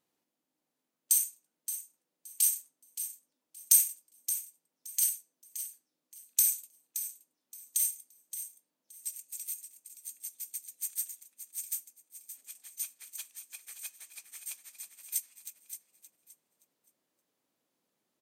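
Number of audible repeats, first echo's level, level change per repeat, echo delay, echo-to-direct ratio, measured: 2, -11.0 dB, -13.0 dB, 0.572 s, -11.0 dB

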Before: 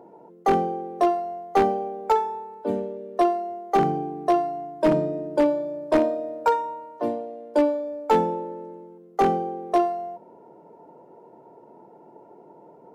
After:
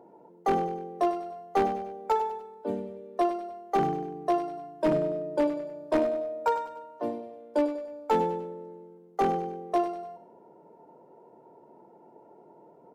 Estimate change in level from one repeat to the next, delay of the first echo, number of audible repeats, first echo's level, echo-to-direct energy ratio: -7.0 dB, 98 ms, 3, -11.0 dB, -10.0 dB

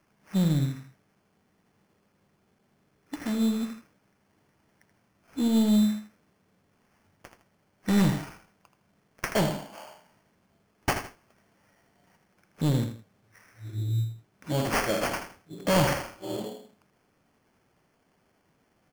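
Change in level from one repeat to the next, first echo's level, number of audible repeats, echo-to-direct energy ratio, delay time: -10.5 dB, -9.0 dB, 2, -8.5 dB, 80 ms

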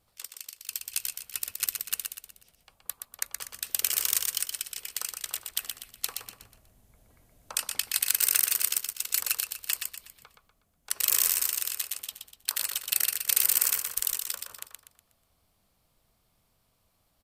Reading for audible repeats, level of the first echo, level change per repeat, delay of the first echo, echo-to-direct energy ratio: 4, -5.5 dB, -8.0 dB, 0.122 s, -4.5 dB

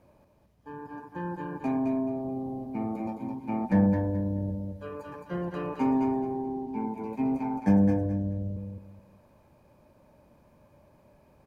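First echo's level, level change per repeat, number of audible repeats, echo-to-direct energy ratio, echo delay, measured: -5.0 dB, -11.5 dB, 3, -4.5 dB, 0.215 s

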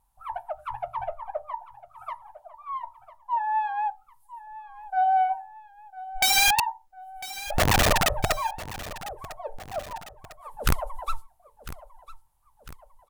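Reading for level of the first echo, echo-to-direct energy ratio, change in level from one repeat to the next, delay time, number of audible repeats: -16.5 dB, -15.5 dB, -5.5 dB, 1.001 s, 2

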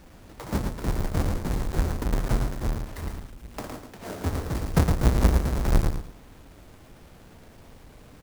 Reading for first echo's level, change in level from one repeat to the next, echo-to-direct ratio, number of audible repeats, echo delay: -5.5 dB, -16.0 dB, -5.5 dB, 2, 0.112 s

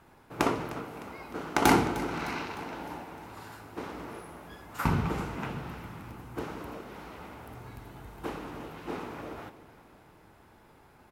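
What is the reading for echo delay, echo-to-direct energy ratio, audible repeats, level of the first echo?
0.305 s, -14.5 dB, 4, -16.0 dB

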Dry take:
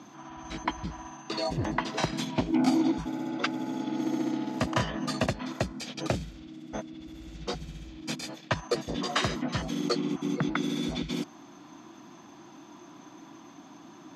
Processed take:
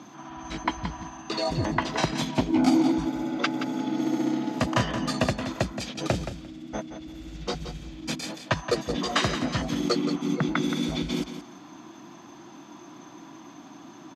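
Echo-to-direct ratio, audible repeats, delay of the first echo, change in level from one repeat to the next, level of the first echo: -10.0 dB, 2, 0.174 s, -15.5 dB, -10.0 dB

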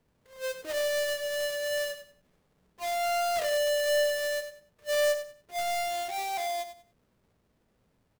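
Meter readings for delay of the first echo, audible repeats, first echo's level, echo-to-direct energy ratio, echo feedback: 95 ms, 3, -10.5 dB, -10.0 dB, 25%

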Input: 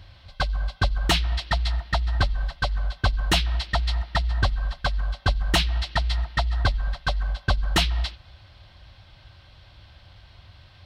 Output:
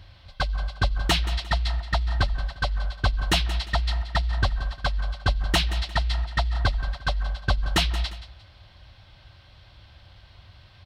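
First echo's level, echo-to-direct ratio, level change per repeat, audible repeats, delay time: -14.0 dB, -13.5 dB, -10.0 dB, 2, 0.176 s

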